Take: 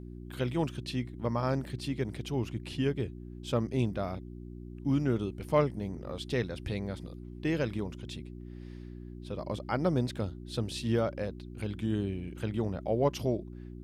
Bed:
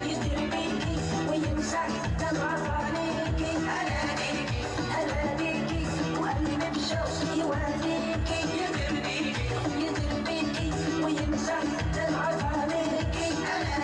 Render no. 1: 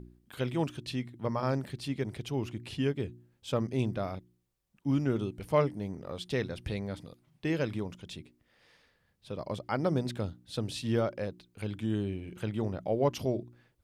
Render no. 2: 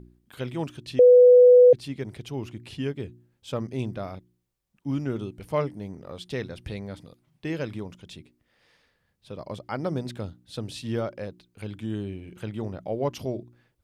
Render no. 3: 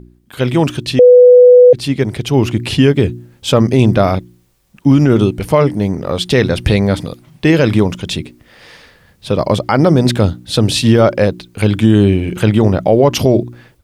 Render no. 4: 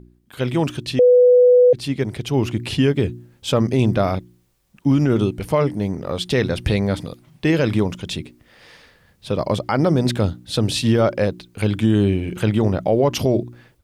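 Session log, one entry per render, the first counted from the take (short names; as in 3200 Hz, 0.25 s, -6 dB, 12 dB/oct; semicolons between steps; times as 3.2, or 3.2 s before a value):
de-hum 60 Hz, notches 6
0.99–1.73 bleep 495 Hz -9.5 dBFS
AGC gain up to 14.5 dB; maximiser +9.5 dB
gain -7 dB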